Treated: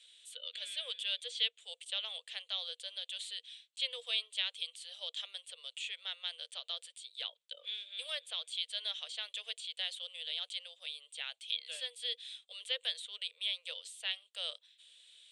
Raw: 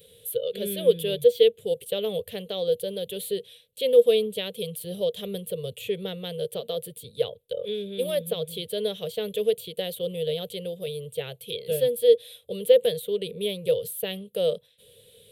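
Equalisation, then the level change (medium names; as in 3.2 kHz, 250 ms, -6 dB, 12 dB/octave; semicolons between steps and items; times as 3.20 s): Bessel high-pass 1.5 kHz, order 8; steep low-pass 8.3 kHz 48 dB/octave; 0.0 dB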